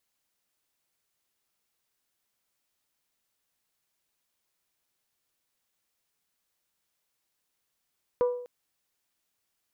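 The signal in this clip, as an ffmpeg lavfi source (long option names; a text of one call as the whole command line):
ffmpeg -f lavfi -i "aevalsrc='0.112*pow(10,-3*t/0.66)*sin(2*PI*491*t)+0.0316*pow(10,-3*t/0.406)*sin(2*PI*982*t)+0.00891*pow(10,-3*t/0.358)*sin(2*PI*1178.4*t)+0.00251*pow(10,-3*t/0.306)*sin(2*PI*1473*t)+0.000708*pow(10,-3*t/0.25)*sin(2*PI*1964*t)':duration=0.25:sample_rate=44100" out.wav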